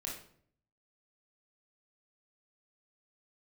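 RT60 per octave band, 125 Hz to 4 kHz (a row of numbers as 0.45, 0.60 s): 0.90, 0.75, 0.65, 0.55, 0.45, 0.40 s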